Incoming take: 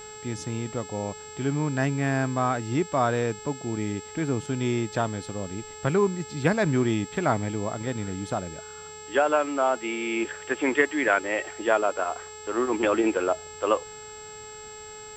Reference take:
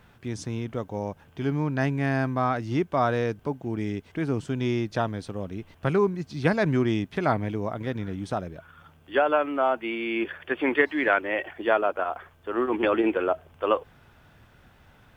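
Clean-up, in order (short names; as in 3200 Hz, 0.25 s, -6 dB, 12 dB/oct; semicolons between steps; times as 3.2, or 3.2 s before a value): de-hum 427.5 Hz, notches 15; notch 7600 Hz, Q 30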